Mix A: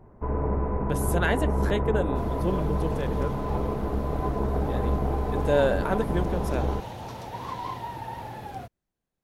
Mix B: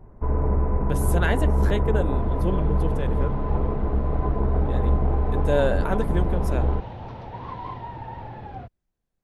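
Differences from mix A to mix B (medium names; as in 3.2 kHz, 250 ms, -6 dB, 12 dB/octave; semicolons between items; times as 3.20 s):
second sound: add distance through air 290 m; master: add bass shelf 69 Hz +11.5 dB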